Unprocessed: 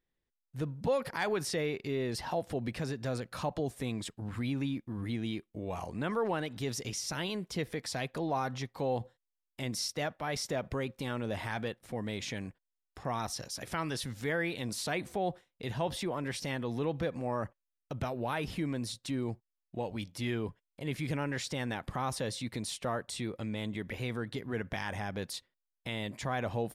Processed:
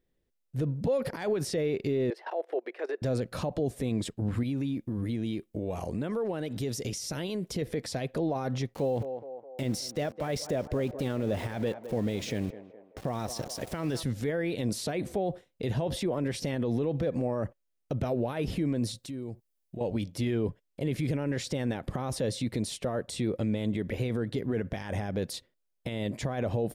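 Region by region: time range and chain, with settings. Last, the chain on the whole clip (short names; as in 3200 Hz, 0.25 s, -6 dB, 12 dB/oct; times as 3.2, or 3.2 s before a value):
2.1–3.02 EQ curve 330 Hz 0 dB, 1900 Hz +6 dB, 7100 Hz -15 dB + level quantiser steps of 18 dB + elliptic high-pass 360 Hz, stop band 50 dB
4.43–7.62 compressor 4:1, threshold -38 dBFS + high shelf 5900 Hz +6 dB
8.74–14.03 sample gate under -46 dBFS + narrowing echo 0.209 s, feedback 60%, band-pass 700 Hz, level -13 dB
18.98–19.81 high shelf 7100 Hz +9 dB + compressor 4:1, threshold -46 dBFS
whole clip: limiter -30.5 dBFS; resonant low shelf 720 Hz +6.5 dB, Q 1.5; gain +2.5 dB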